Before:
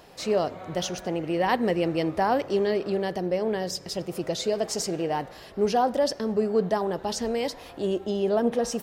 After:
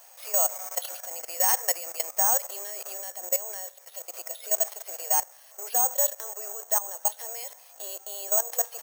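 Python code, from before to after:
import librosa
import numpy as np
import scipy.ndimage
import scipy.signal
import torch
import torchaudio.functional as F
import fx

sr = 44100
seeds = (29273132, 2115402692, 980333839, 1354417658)

y = scipy.signal.sosfilt(scipy.signal.butter(6, 590.0, 'highpass', fs=sr, output='sos'), x)
y = fx.level_steps(y, sr, step_db=15)
y = (np.kron(scipy.signal.resample_poly(y, 1, 6), np.eye(6)[0]) * 6)[:len(y)]
y = y * 10.0 ** (1.0 / 20.0)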